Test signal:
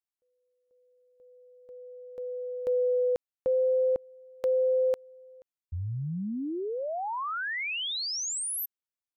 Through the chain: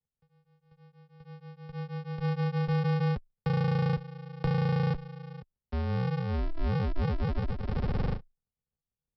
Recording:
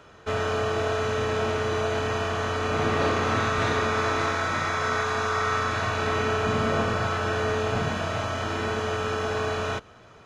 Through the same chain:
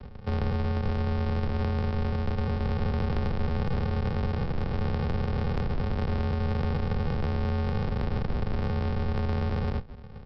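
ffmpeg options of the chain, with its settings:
-filter_complex "[0:a]equalizer=f=100:t=o:w=0.33:g=-4,equalizer=f=200:t=o:w=0.33:g=-6,equalizer=f=400:t=o:w=0.33:g=8,equalizer=f=800:t=o:w=0.33:g=6,equalizer=f=2k:t=o:w=0.33:g=-10,aresample=11025,acrusher=samples=33:mix=1:aa=0.000001,aresample=44100,acompressor=threshold=-33dB:ratio=6:attack=7.5:release=23:knee=1:detection=peak,afreqshift=-14,highshelf=f=2.2k:g=-11,asplit=2[a][b];[b]asoftclip=type=tanh:threshold=-39dB,volume=-7.5dB[c];[a][c]amix=inputs=2:normalize=0,volume=4.5dB"

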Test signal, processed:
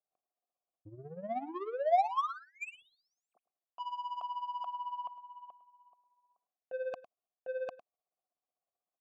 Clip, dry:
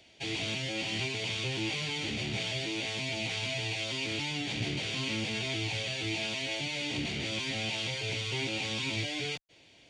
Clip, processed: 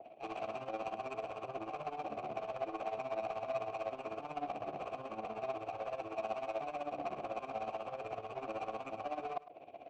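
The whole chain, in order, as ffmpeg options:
-filter_complex "[0:a]areverse,acompressor=threshold=-40dB:ratio=10,areverse,aeval=exprs='0.0596*sin(PI/2*7.08*val(0)/0.0596)':c=same,tremolo=f=16:d=0.65,asplit=3[a][b][c];[a]bandpass=f=730:t=q:w=8,volume=0dB[d];[b]bandpass=f=1.09k:t=q:w=8,volume=-6dB[e];[c]bandpass=f=2.44k:t=q:w=8,volume=-9dB[f];[d][e][f]amix=inputs=3:normalize=0,adynamicsmooth=sensitivity=5.5:basefreq=640,asplit=2[g][h];[h]aecho=0:1:105:0.158[i];[g][i]amix=inputs=2:normalize=0,adynamicequalizer=threshold=0.00112:dfrequency=1700:dqfactor=0.7:tfrequency=1700:tqfactor=0.7:attack=5:release=100:ratio=0.375:range=3:mode=cutabove:tftype=highshelf,volume=7.5dB"

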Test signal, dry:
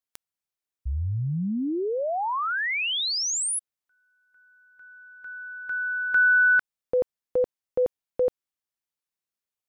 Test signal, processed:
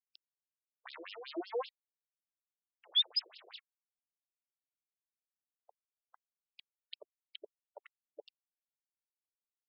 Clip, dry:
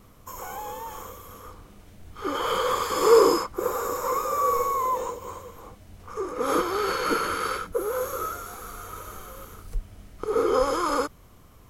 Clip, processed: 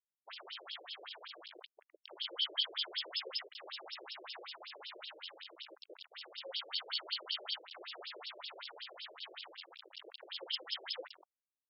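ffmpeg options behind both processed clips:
-filter_complex "[0:a]acrossover=split=2600[a][b];[b]acompressor=threshold=-40dB:ratio=4:attack=1:release=60[c];[a][c]amix=inputs=2:normalize=0,agate=range=-33dB:threshold=-43dB:ratio=3:release=148:detection=rms,afftfilt=real='re*(1-between(b*sr/4096,270,2800))':imag='im*(1-between(b*sr/4096,270,2800))':win_size=4096:overlap=0.75,bass=f=250:g=-6,treble=f=4k:g=2,asplit=2[d][e];[e]acompressor=threshold=-45dB:ratio=10:attack=3.7:release=297:knee=1:detection=rms,volume=0dB[f];[d][f]amix=inputs=2:normalize=0,volume=28dB,asoftclip=hard,volume=-28dB,acrusher=bits=5:dc=4:mix=0:aa=0.000001,aresample=32000,aresample=44100,afftfilt=real='re*between(b*sr/1024,430*pow(3900/430,0.5+0.5*sin(2*PI*5.3*pts/sr))/1.41,430*pow(3900/430,0.5+0.5*sin(2*PI*5.3*pts/sr))*1.41)':imag='im*between(b*sr/1024,430*pow(3900/430,0.5+0.5*sin(2*PI*5.3*pts/sr))/1.41,430*pow(3900/430,0.5+0.5*sin(2*PI*5.3*pts/sr))*1.41)':win_size=1024:overlap=0.75,volume=12.5dB"

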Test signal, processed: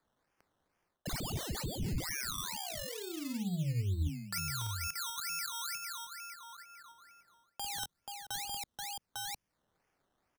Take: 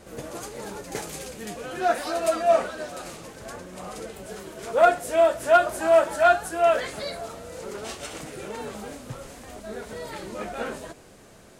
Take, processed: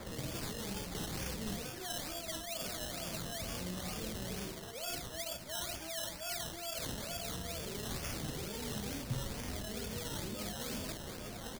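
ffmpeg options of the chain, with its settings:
-filter_complex "[0:a]highshelf=f=11k:g=7.5,asplit=2[a][b];[b]asoftclip=type=tanh:threshold=-24dB,volume=-5dB[c];[a][c]amix=inputs=2:normalize=0,aecho=1:1:50|73|482|851:0.596|0.141|0.15|0.2,areverse,acompressor=threshold=-31dB:ratio=10,areverse,acrusher=samples=15:mix=1:aa=0.000001:lfo=1:lforange=9:lforate=2.2,acrossover=split=220|3000[d][e][f];[e]acompressor=threshold=-51dB:ratio=3[g];[d][g][f]amix=inputs=3:normalize=0,volume=1dB"

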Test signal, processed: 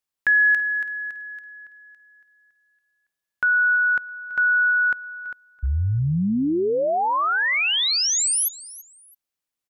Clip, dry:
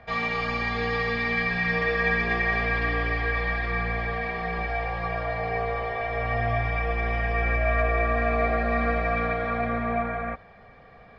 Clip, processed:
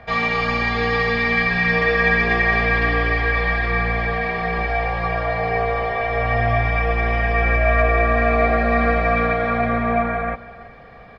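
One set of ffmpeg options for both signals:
-af "aecho=1:1:331|662:0.119|0.0321,volume=7dB"

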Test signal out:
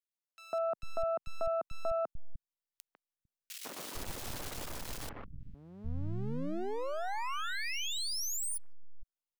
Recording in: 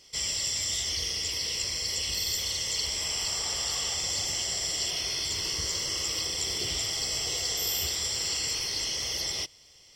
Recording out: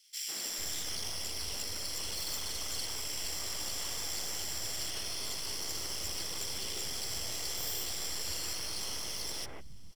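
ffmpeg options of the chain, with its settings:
-filter_complex "[0:a]aeval=exprs='max(val(0),0)':c=same,acrossover=split=190|2100[a][b][c];[b]adelay=150[d];[a]adelay=450[e];[e][d][c]amix=inputs=3:normalize=0,volume=-2.5dB"

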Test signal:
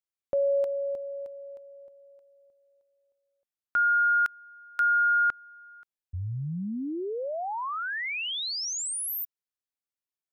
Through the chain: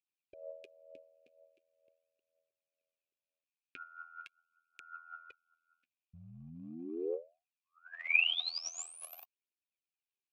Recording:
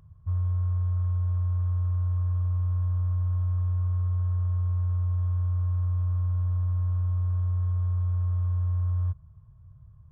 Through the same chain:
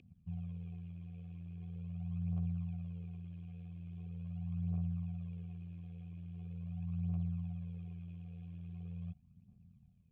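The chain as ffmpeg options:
-filter_complex "[0:a]asuperstop=centerf=880:order=12:qfactor=0.58,aphaser=in_gain=1:out_gain=1:delay=4.4:decay=0.65:speed=0.42:type=triangular,tremolo=f=83:d=0.919,asplit=3[a][b][c];[a]bandpass=f=730:t=q:w=8,volume=0dB[d];[b]bandpass=f=1.09k:t=q:w=8,volume=-6dB[e];[c]bandpass=f=2.44k:t=q:w=8,volume=-9dB[f];[d][e][f]amix=inputs=3:normalize=0,volume=17.5dB"

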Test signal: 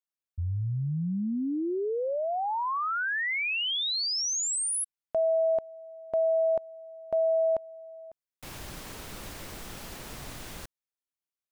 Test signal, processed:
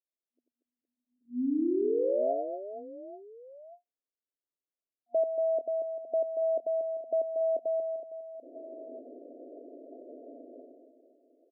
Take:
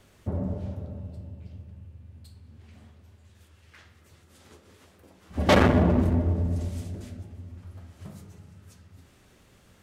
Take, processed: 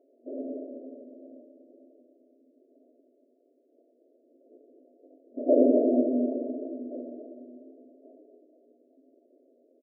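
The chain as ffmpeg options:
-af "afftfilt=real='re*between(b*sr/4096,240,710)':imag='im*between(b*sr/4096,240,710)':win_size=4096:overlap=0.75,aecho=1:1:90|234|464.4|833|1423:0.631|0.398|0.251|0.158|0.1"

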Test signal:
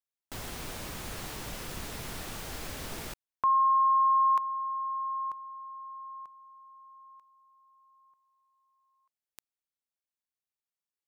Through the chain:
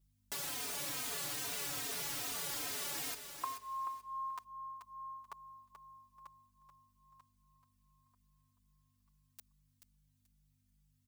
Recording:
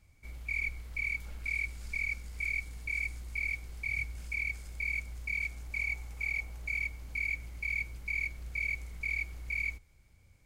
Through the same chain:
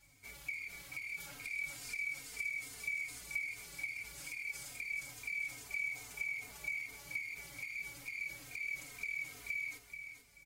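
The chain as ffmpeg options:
-filter_complex "[0:a]highpass=f=350:p=1,highshelf=f=3.2k:g=8,aecho=1:1:7:0.86,alimiter=level_in=1dB:limit=-24dB:level=0:latency=1:release=35,volume=-1dB,acompressor=threshold=-43dB:ratio=6:attack=32:release=36:detection=peak,aeval=exprs='val(0)+0.000282*(sin(2*PI*50*n/s)+sin(2*PI*2*50*n/s)/2+sin(2*PI*3*50*n/s)/3+sin(2*PI*4*50*n/s)/4+sin(2*PI*5*50*n/s)/5)':c=same,aecho=1:1:433|866|1299:0.376|0.0789|0.0166,asplit=2[a][b];[b]adelay=3.1,afreqshift=-2.4[c];[a][c]amix=inputs=2:normalize=1,volume=2.5dB"

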